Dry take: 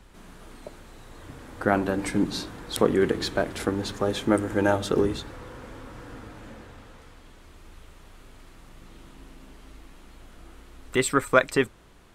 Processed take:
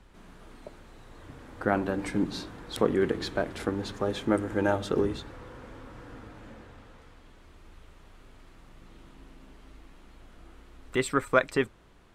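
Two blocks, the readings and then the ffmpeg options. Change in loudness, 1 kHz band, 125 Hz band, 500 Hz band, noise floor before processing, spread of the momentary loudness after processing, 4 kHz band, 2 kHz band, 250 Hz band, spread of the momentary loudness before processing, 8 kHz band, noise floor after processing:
-4.0 dB, -3.5 dB, -3.5 dB, -3.5 dB, -51 dBFS, 21 LU, -5.5 dB, -4.0 dB, -3.5 dB, 21 LU, -8.5 dB, -55 dBFS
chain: -af "highshelf=f=6.1k:g=-8,volume=-3.5dB"

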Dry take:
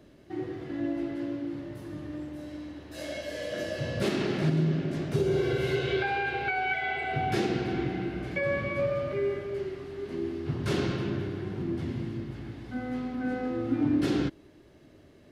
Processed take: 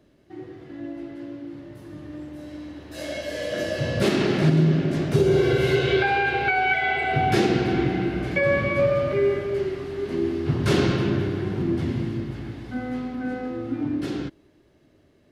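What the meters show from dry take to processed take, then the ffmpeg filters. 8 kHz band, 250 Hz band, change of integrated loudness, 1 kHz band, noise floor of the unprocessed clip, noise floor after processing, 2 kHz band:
+7.0 dB, +5.0 dB, +7.5 dB, +7.5 dB, -55 dBFS, -59 dBFS, +7.5 dB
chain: -af "dynaudnorm=f=260:g=21:m=13dB,volume=-4dB"

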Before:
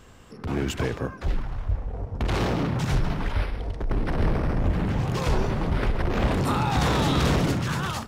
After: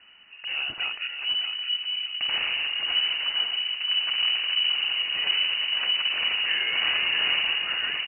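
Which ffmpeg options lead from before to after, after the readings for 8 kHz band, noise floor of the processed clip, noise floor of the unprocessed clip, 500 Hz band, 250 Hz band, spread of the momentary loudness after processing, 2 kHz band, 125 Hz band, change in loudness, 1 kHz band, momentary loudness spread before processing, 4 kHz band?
under -40 dB, -45 dBFS, -43 dBFS, -18.5 dB, under -25 dB, 6 LU, +7.5 dB, under -35 dB, +2.5 dB, -11.0 dB, 9 LU, +16.5 dB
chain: -filter_complex "[0:a]asplit=2[a][b];[b]adelay=617,lowpass=f=2.1k:p=1,volume=-6dB,asplit=2[c][d];[d]adelay=617,lowpass=f=2.1k:p=1,volume=0.41,asplit=2[e][f];[f]adelay=617,lowpass=f=2.1k:p=1,volume=0.41,asplit=2[g][h];[h]adelay=617,lowpass=f=2.1k:p=1,volume=0.41,asplit=2[i][j];[j]adelay=617,lowpass=f=2.1k:p=1,volume=0.41[k];[a][c][e][g][i][k]amix=inputs=6:normalize=0,lowpass=f=2.6k:t=q:w=0.5098,lowpass=f=2.6k:t=q:w=0.6013,lowpass=f=2.6k:t=q:w=0.9,lowpass=f=2.6k:t=q:w=2.563,afreqshift=-3000,volume=-3.5dB"

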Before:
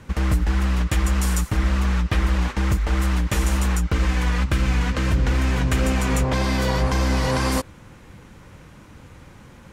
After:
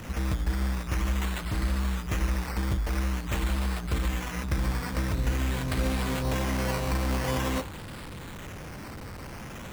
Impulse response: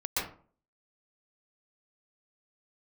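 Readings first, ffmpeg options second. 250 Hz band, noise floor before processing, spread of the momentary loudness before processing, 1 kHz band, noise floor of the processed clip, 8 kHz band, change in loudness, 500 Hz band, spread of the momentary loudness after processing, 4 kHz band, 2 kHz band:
-7.0 dB, -46 dBFS, 1 LU, -7.0 dB, -41 dBFS, -8.0 dB, -7.5 dB, -6.5 dB, 12 LU, -6.5 dB, -7.0 dB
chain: -af "aeval=exprs='val(0)+0.5*0.0422*sgn(val(0))':c=same,acrusher=samples=10:mix=1:aa=0.000001:lfo=1:lforange=6:lforate=0.47,bandreject=f=60.66:t=h:w=4,bandreject=f=121.32:t=h:w=4,bandreject=f=181.98:t=h:w=4,bandreject=f=242.64:t=h:w=4,bandreject=f=303.3:t=h:w=4,bandreject=f=363.96:t=h:w=4,bandreject=f=424.62:t=h:w=4,bandreject=f=485.28:t=h:w=4,bandreject=f=545.94:t=h:w=4,bandreject=f=606.6:t=h:w=4,bandreject=f=667.26:t=h:w=4,bandreject=f=727.92:t=h:w=4,bandreject=f=788.58:t=h:w=4,bandreject=f=849.24:t=h:w=4,bandreject=f=909.9:t=h:w=4,bandreject=f=970.56:t=h:w=4,bandreject=f=1.03122k:t=h:w=4,bandreject=f=1.09188k:t=h:w=4,bandreject=f=1.15254k:t=h:w=4,bandreject=f=1.2132k:t=h:w=4,bandreject=f=1.27386k:t=h:w=4,bandreject=f=1.33452k:t=h:w=4,bandreject=f=1.39518k:t=h:w=4,bandreject=f=1.45584k:t=h:w=4,bandreject=f=1.5165k:t=h:w=4,bandreject=f=1.57716k:t=h:w=4,bandreject=f=1.63782k:t=h:w=4,bandreject=f=1.69848k:t=h:w=4,volume=-8dB"

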